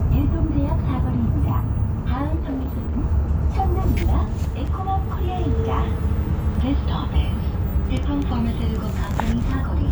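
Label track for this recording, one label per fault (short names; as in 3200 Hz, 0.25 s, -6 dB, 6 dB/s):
2.350000	2.960000	clipped -21.5 dBFS
4.670000	4.670000	gap 4.7 ms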